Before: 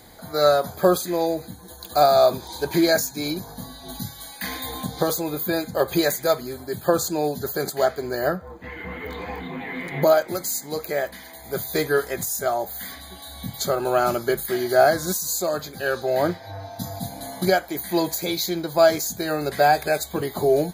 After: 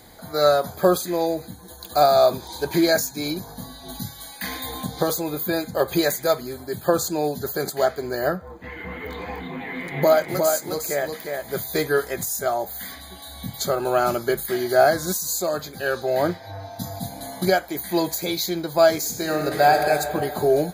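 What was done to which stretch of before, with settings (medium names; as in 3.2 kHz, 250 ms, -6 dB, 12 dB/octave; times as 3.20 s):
9.61–11.60 s: delay 358 ms -4.5 dB
18.97–19.76 s: reverb throw, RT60 2.7 s, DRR 3 dB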